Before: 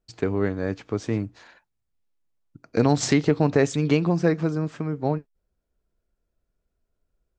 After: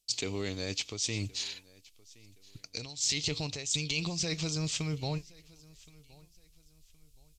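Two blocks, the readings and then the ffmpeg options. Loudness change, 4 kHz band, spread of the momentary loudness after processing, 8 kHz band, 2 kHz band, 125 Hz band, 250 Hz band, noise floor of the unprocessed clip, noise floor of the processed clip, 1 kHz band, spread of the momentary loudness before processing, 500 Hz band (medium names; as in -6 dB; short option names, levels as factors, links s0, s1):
-9.0 dB, +5.5 dB, 10 LU, +3.0 dB, -6.5 dB, -11.0 dB, -15.5 dB, -79 dBFS, -63 dBFS, -16.5 dB, 9 LU, -16.5 dB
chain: -af "alimiter=limit=0.15:level=0:latency=1:release=131,asubboost=boost=9:cutoff=85,aexciter=amount=15.3:drive=6.4:freq=2500,areverse,acompressor=threshold=0.0562:ratio=8,areverse,aecho=1:1:1070|2140:0.0631|0.0202,aresample=32000,aresample=44100,volume=0.596"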